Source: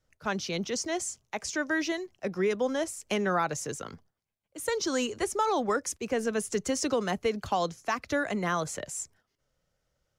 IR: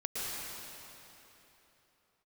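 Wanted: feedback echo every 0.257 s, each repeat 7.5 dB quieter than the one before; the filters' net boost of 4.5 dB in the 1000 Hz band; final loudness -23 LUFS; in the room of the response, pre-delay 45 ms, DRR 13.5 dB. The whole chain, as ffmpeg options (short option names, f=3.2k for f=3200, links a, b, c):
-filter_complex "[0:a]equalizer=f=1k:t=o:g=6,aecho=1:1:257|514|771|1028|1285:0.422|0.177|0.0744|0.0312|0.0131,asplit=2[a][b];[1:a]atrim=start_sample=2205,adelay=45[c];[b][c]afir=irnorm=-1:irlink=0,volume=-18.5dB[d];[a][d]amix=inputs=2:normalize=0,volume=5dB"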